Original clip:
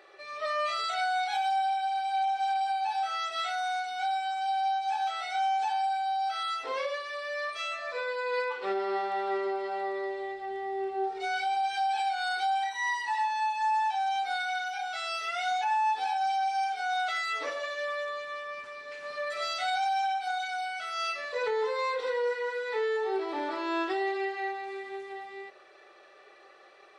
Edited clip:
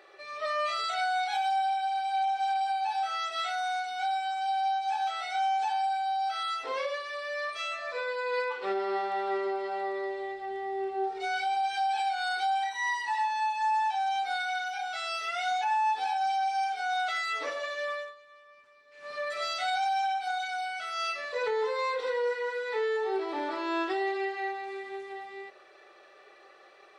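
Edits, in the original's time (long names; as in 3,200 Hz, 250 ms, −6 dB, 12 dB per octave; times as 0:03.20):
0:17.92–0:19.15: duck −17 dB, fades 0.23 s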